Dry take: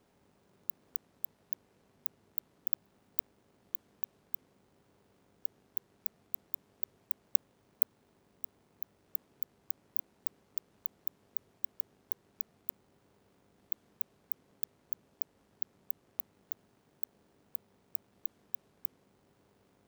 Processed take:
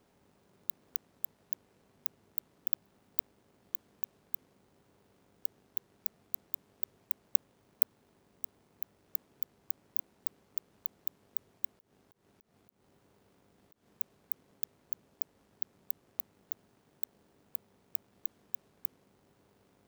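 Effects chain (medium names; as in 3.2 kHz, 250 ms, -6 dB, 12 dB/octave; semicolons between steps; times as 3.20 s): 11.71–13.87 s: slow attack 173 ms; short-mantissa float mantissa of 2-bit; trim +1 dB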